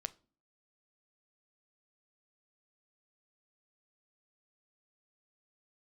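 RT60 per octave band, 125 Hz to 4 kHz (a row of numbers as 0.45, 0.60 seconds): 0.55, 0.60, 0.45, 0.35, 0.30, 0.30 seconds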